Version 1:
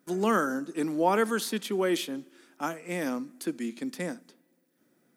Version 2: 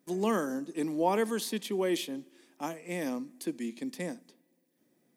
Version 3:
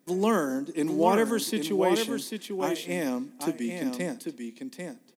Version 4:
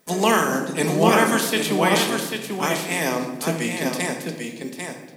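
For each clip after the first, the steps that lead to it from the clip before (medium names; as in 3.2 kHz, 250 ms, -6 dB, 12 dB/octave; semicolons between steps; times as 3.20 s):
peaking EQ 1.4 kHz -14.5 dB 0.27 oct; trim -2.5 dB
delay 794 ms -6 dB; trim +4.5 dB
spectral peaks clipped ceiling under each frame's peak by 17 dB; on a send at -3.5 dB: reverberation RT60 1.1 s, pre-delay 5 ms; on the sum: trim +4.5 dB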